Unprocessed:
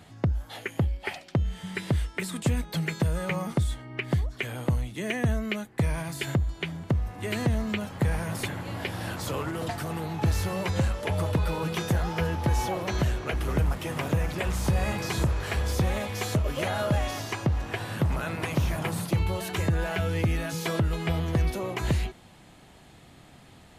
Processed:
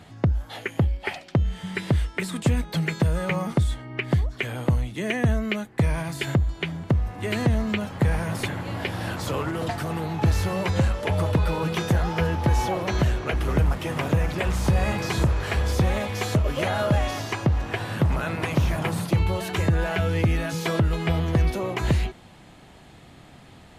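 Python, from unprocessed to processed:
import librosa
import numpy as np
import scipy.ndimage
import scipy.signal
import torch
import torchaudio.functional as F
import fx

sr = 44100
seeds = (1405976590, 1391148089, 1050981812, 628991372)

y = fx.high_shelf(x, sr, hz=6800.0, db=-6.5)
y = F.gain(torch.from_numpy(y), 4.0).numpy()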